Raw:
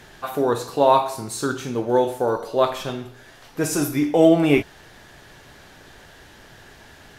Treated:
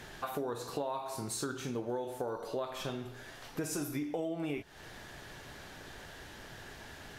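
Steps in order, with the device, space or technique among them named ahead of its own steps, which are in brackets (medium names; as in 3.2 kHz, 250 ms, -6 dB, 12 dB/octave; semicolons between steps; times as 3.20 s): serial compression, leveller first (compression 2.5:1, threshold -19 dBFS, peak gain reduction 7 dB; compression 4:1, threshold -33 dBFS, peak gain reduction 14.5 dB); trim -2.5 dB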